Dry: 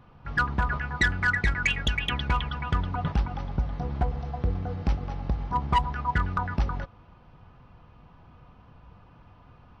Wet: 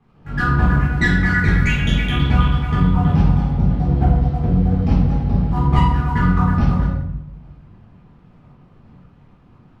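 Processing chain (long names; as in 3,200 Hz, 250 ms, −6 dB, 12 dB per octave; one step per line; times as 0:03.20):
dead-zone distortion −51 dBFS
parametric band 170 Hz +12 dB 1.9 octaves
convolution reverb RT60 0.85 s, pre-delay 7 ms, DRR −9 dB
level −6 dB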